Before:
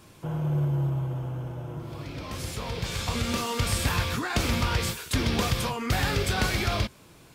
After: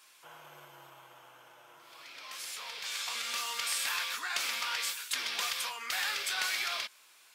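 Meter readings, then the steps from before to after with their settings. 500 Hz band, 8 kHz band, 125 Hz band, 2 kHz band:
-19.0 dB, -1.5 dB, under -40 dB, -3.0 dB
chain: HPF 1400 Hz 12 dB/oct; gain -1.5 dB

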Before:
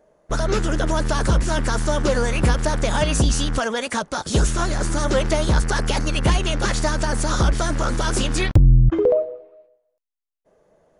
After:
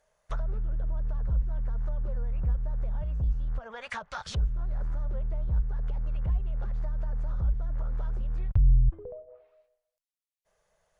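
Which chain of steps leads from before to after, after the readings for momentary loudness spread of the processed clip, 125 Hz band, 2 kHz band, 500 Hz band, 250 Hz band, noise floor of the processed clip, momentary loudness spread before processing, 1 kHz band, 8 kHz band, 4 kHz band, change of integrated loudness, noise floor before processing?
8 LU, -10.0 dB, -20.5 dB, -23.5 dB, -22.0 dB, -85 dBFS, 6 LU, -20.5 dB, -30.5 dB, -23.5 dB, -11.0 dB, -71 dBFS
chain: treble ducked by the level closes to 360 Hz, closed at -16.5 dBFS; passive tone stack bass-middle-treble 10-0-10

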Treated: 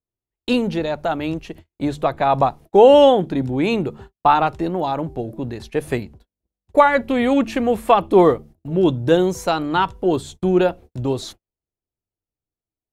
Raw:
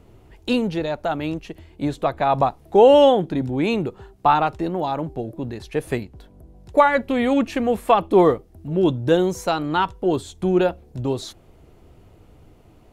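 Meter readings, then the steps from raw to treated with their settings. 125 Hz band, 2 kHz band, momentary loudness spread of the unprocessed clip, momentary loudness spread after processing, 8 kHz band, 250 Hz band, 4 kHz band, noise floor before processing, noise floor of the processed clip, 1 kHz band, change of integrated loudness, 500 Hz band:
+1.5 dB, +2.0 dB, 14 LU, 14 LU, n/a, +2.0 dB, +2.0 dB, -51 dBFS, under -85 dBFS, +2.0 dB, +2.0 dB, +2.0 dB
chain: de-hum 73.83 Hz, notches 3; gate -39 dBFS, range -45 dB; gain +2 dB

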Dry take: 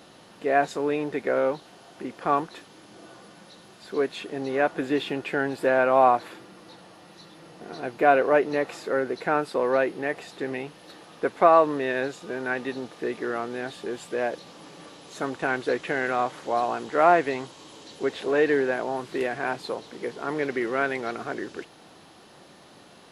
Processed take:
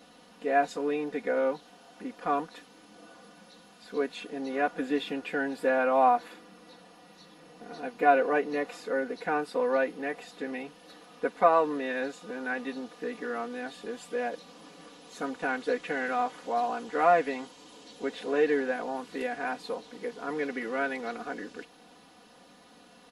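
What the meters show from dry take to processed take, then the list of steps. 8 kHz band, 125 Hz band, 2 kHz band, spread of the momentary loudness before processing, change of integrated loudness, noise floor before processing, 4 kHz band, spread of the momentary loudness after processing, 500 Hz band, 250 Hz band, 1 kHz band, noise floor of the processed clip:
n/a, -11.0 dB, -4.0 dB, 16 LU, -4.5 dB, -51 dBFS, -4.5 dB, 17 LU, -5.0 dB, -3.5 dB, -3.5 dB, -56 dBFS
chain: comb 4.1 ms, depth 98%; gain -7.5 dB

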